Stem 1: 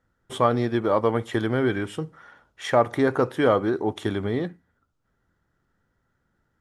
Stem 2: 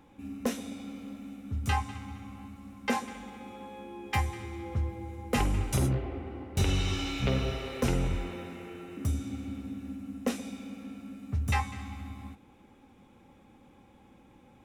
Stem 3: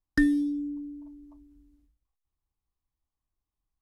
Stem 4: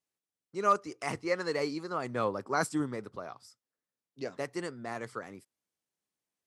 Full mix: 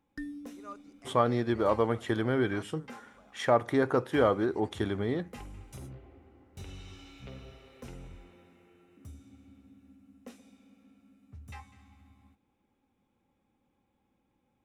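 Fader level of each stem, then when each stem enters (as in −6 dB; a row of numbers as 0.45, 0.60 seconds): −5.0, −18.0, −17.5, −20.0 decibels; 0.75, 0.00, 0.00, 0.00 seconds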